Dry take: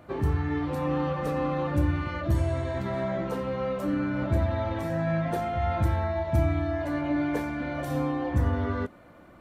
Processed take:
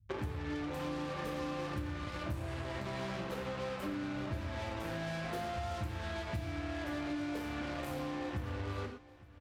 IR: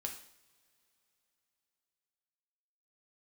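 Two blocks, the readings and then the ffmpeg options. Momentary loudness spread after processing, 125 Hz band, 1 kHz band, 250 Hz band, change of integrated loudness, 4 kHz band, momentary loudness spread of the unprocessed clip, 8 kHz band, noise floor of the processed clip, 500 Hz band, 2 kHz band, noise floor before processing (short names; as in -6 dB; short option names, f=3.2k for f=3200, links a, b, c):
2 LU, -13.0 dB, -9.5 dB, -10.5 dB, -11.0 dB, +0.5 dB, 4 LU, n/a, -54 dBFS, -11.0 dB, -6.0 dB, -51 dBFS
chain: -filter_complex "[0:a]acrossover=split=110[a][b];[b]acrusher=bits=4:mix=0:aa=0.5[c];[a][c]amix=inputs=2:normalize=0[d];[1:a]atrim=start_sample=2205,afade=t=out:st=0.18:d=0.01,atrim=end_sample=8379[e];[d][e]afir=irnorm=-1:irlink=0,acompressor=threshold=-36dB:ratio=6,aecho=1:1:866|1732|2598:0.106|0.0403|0.0153"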